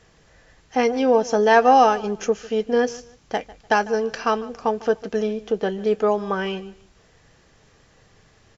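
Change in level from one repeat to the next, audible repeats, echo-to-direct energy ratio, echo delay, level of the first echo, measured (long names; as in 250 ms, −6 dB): −11.5 dB, 2, −19.5 dB, 149 ms, −20.0 dB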